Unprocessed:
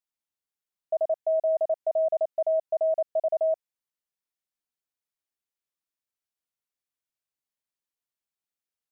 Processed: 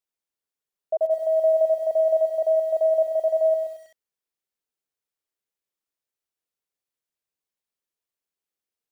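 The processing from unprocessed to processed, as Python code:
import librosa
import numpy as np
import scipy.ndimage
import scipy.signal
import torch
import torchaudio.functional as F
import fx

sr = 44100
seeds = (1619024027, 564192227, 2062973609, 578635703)

y = fx.peak_eq(x, sr, hz=440.0, db=6.0, octaves=0.74)
y = y + 10.0 ** (-9.5 / 20.0) * np.pad(y, (int(128 * sr / 1000.0), 0))[:len(y)]
y = fx.echo_crushed(y, sr, ms=97, feedback_pct=35, bits=8, wet_db=-9.5)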